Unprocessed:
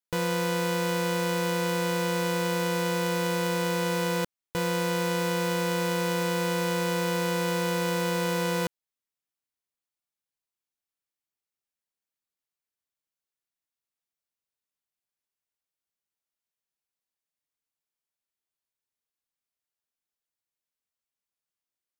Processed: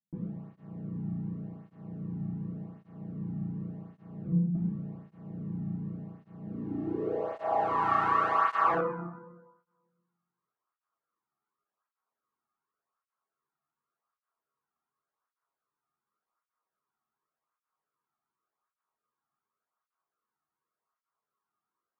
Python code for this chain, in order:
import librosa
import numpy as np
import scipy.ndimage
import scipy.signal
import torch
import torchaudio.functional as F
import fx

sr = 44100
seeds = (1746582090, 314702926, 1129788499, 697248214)

y = fx.highpass(x, sr, hz=44.0, slope=6)
y = fx.peak_eq(y, sr, hz=8600.0, db=9.5, octaves=0.36)
y = fx.hum_notches(y, sr, base_hz=60, count=3)
y = fx.rev_fdn(y, sr, rt60_s=1.2, lf_ratio=1.3, hf_ratio=0.5, size_ms=43.0, drr_db=-2.0)
y = (np.mod(10.0 ** (22.5 / 20.0) * y + 1.0, 2.0) - 1.0) / 10.0 ** (22.5 / 20.0)
y = fx.tube_stage(y, sr, drive_db=32.0, bias=0.7)
y = fx.filter_sweep_lowpass(y, sr, from_hz=180.0, to_hz=1200.0, start_s=6.4, end_s=7.93, q=4.8)
y = fx.flanger_cancel(y, sr, hz=0.88, depth_ms=2.1)
y = y * librosa.db_to_amplitude(7.0)